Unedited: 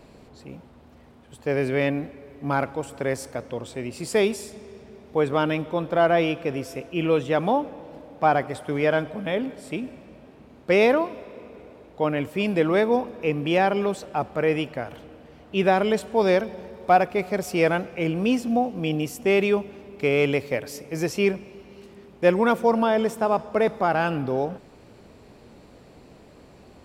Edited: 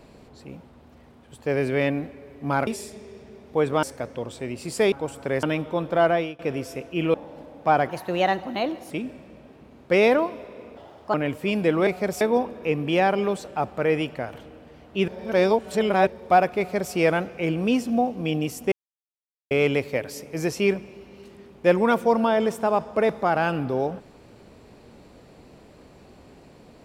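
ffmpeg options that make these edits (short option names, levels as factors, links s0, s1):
-filter_complex "[0:a]asplit=17[s0][s1][s2][s3][s4][s5][s6][s7][s8][s9][s10][s11][s12][s13][s14][s15][s16];[s0]atrim=end=2.672[s17];[s1]atrim=start=4.268:end=5.432[s18];[s2]atrim=start=3.178:end=4.272[s19];[s3]atrim=start=2.668:end=3.182[s20];[s4]atrim=start=5.428:end=6.39,asetpts=PTS-STARTPTS,afade=t=out:st=0.642:d=0.32:silence=0.0707946[s21];[s5]atrim=start=6.39:end=7.142,asetpts=PTS-STARTPTS,afade=t=in:d=0.004:c=hsin:silence=0.0707946[s22];[s6]atrim=start=7.698:end=8.454[s23];[s7]atrim=start=8.45:end=9.69,asetpts=PTS-STARTPTS,asetrate=53802,aresample=44100[s24];[s8]atrim=start=9.686:end=11.554[s25];[s9]atrim=start=11.55:end=12.06,asetpts=PTS-STARTPTS,asetrate=60417,aresample=44100[s26];[s10]atrim=start=12.056:end=12.792[s27];[s11]atrim=start=17.168:end=17.512[s28];[s12]atrim=start=12.788:end=15.662[s29];[s13]atrim=start=15.658:end=16.652,asetpts=PTS-STARTPTS,areverse[s30];[s14]atrim=start=16.648:end=19.3,asetpts=PTS-STARTPTS,afade=t=out:st=2.648:d=0.004:c=hsin[s31];[s15]atrim=start=19.3:end=20.09,asetpts=PTS-STARTPTS,volume=0[s32];[s16]atrim=start=20.09,asetpts=PTS-STARTPTS,afade=t=in:d=0.004:c=hsin[s33];[s17][s18]acrossfade=d=0.004:c1=hsin:c2=hsin[s34];[s34][s19]acrossfade=d=0.004:c1=hsin:c2=hsin[s35];[s35][s20]acrossfade=d=0.004:c1=hsin:c2=hsin[s36];[s21][s22]concat=n=2:v=0:a=1[s37];[s36][s37]acrossfade=d=0.004:c1=hsin:c2=hsin[s38];[s38][s23]acrossfade=d=0.004:c1=hsin:c2=hsin[s39];[s39][s24]acrossfade=d=0.004:c1=hsin:c2=hsin[s40];[s40][s25]acrossfade=d=0.004:c1=hsin:c2=hsin[s41];[s41][s26]acrossfade=d=0.004:c1=hsin:c2=hsin[s42];[s42][s27]acrossfade=d=0.004:c1=hsin:c2=hsin[s43];[s43][s28]acrossfade=d=0.004:c1=hsin:c2=hsin[s44];[s44][s29]acrossfade=d=0.004:c1=hsin:c2=hsin[s45];[s45][s30]acrossfade=d=0.004:c1=hsin:c2=hsin[s46];[s31][s32][s33]concat=n=3:v=0:a=1[s47];[s46][s47]acrossfade=d=0.004:c1=hsin:c2=hsin"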